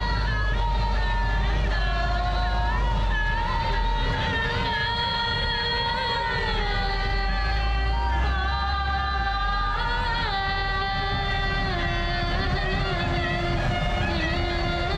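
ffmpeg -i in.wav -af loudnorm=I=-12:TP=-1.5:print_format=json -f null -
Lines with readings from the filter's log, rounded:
"input_i" : "-25.3",
"input_tp" : "-16.0",
"input_lra" : "0.8",
"input_thresh" : "-35.3",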